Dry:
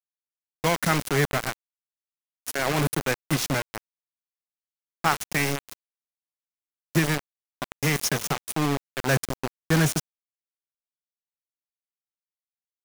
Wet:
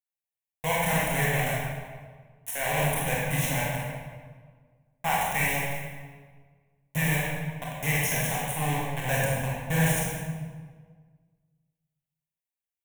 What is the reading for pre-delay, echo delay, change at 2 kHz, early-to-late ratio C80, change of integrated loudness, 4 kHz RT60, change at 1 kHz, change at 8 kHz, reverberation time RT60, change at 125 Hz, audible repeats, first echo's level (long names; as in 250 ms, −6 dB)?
23 ms, no echo audible, 0.0 dB, 0.5 dB, −1.5 dB, 1.1 s, 0.0 dB, −1.0 dB, 1.6 s, −0.5 dB, no echo audible, no echo audible